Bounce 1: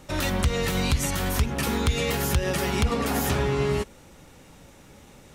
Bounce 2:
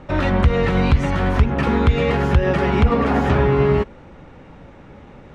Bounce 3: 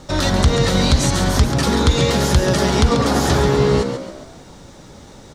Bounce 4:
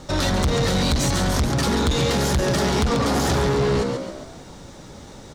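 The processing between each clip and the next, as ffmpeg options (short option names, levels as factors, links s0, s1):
-af "lowpass=1900,volume=2.66"
-filter_complex "[0:a]aexciter=amount=13.2:drive=3.2:freq=3800,asplit=2[s0][s1];[s1]asplit=5[s2][s3][s4][s5][s6];[s2]adelay=138,afreqshift=62,volume=0.398[s7];[s3]adelay=276,afreqshift=124,volume=0.176[s8];[s4]adelay=414,afreqshift=186,volume=0.0767[s9];[s5]adelay=552,afreqshift=248,volume=0.0339[s10];[s6]adelay=690,afreqshift=310,volume=0.015[s11];[s7][s8][s9][s10][s11]amix=inputs=5:normalize=0[s12];[s0][s12]amix=inputs=2:normalize=0"
-af "asoftclip=type=tanh:threshold=0.158"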